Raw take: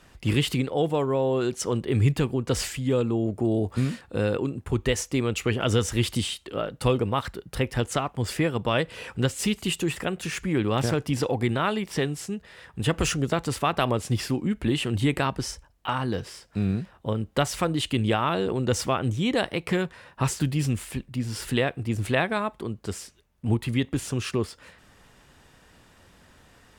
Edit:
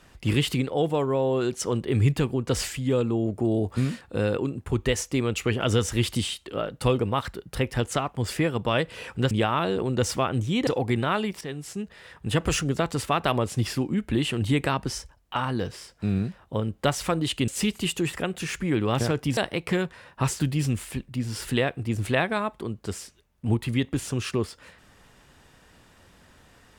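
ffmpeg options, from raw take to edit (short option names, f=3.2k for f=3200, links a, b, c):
-filter_complex "[0:a]asplit=6[a][b][c][d][e][f];[a]atrim=end=9.312[g];[b]atrim=start=18.008:end=19.372[h];[c]atrim=start=11.198:end=11.94,asetpts=PTS-STARTPTS,afade=t=out:st=0.738:d=0.004:c=hsin:silence=0.211349[i];[d]atrim=start=11.94:end=18.012,asetpts=PTS-STARTPTS,afade=t=in:d=0.43:silence=0.211349[j];[e]atrim=start=9.308:end=11.202[k];[f]atrim=start=19.368[l];[g][h]acrossfade=d=0.004:c1=hsin:c2=hsin[m];[i][j]concat=n=2:v=0:a=1[n];[m][n]acrossfade=d=0.004:c1=hsin:c2=hsin[o];[o][k]acrossfade=d=0.004:c1=hsin:c2=hsin[p];[p][l]acrossfade=d=0.004:c1=hsin:c2=hsin"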